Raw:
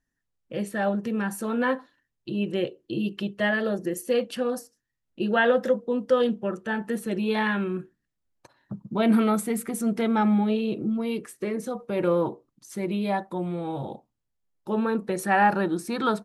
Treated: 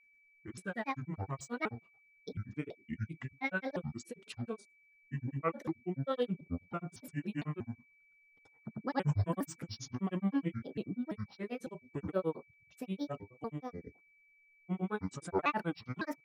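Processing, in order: pitch shift switched off and on -7.5 st, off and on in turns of 334 ms; granulator, grains 9.4 per s, pitch spread up and down by 7 st; whistle 2.3 kHz -57 dBFS; trim -7.5 dB

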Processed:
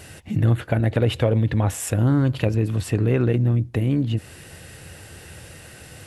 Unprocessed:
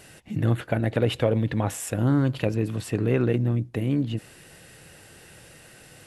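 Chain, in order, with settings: peaking EQ 81 Hz +11.5 dB 0.74 oct; in parallel at +2 dB: compression, threshold -28 dBFS, peak gain reduction 13 dB; on the sum: trim -1.5 dB

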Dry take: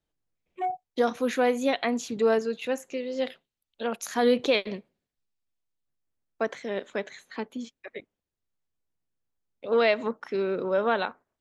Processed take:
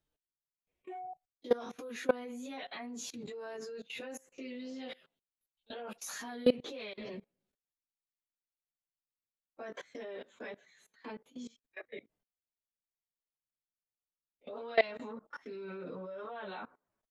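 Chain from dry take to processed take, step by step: plain phase-vocoder stretch 1.5×; level held to a coarse grid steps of 22 dB; trim +1 dB

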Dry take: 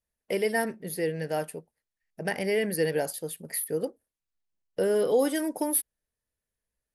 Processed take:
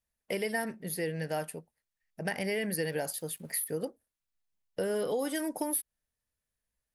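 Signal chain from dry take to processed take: peaking EQ 410 Hz -5 dB 1 oct; compression, threshold -28 dBFS, peak gain reduction 7.5 dB; 2.87–3.74 s: small samples zeroed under -59 dBFS

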